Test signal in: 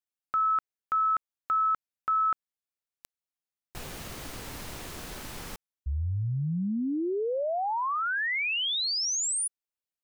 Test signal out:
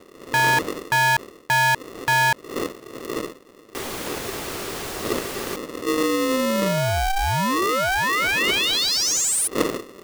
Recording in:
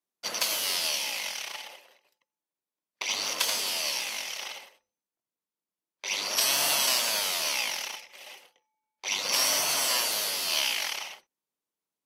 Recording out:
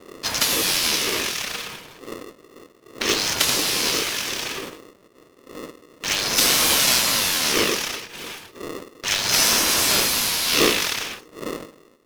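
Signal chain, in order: companding laws mixed up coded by mu; wind noise 120 Hz -40 dBFS; polarity switched at an audio rate 390 Hz; trim +6.5 dB

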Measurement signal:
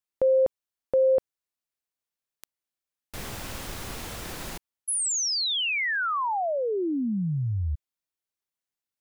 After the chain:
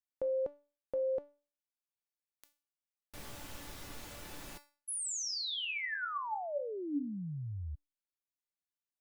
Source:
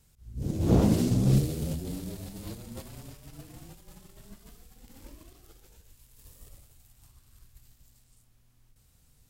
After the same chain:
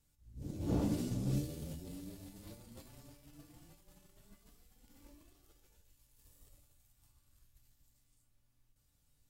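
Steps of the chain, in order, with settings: feedback comb 290 Hz, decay 0.36 s, harmonics all, mix 80%

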